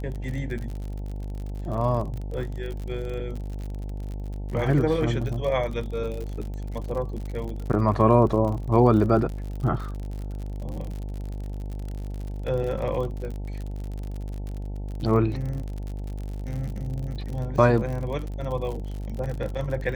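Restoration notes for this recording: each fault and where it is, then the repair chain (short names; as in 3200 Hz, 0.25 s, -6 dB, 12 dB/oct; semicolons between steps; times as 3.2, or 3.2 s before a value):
buzz 50 Hz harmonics 18 -32 dBFS
crackle 56/s -32 dBFS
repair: de-click; de-hum 50 Hz, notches 18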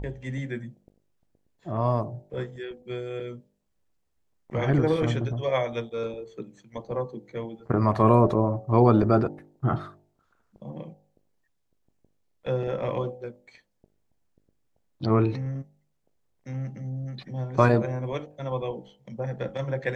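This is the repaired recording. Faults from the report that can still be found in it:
none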